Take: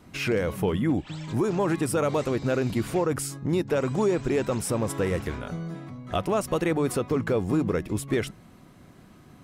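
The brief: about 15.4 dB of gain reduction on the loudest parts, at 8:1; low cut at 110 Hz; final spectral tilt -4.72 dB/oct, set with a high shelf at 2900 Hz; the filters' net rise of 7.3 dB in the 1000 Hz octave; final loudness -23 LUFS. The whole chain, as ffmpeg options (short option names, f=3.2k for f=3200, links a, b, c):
-af "highpass=110,equalizer=f=1k:t=o:g=8.5,highshelf=f=2.9k:g=5.5,acompressor=threshold=-34dB:ratio=8,volume=15dB"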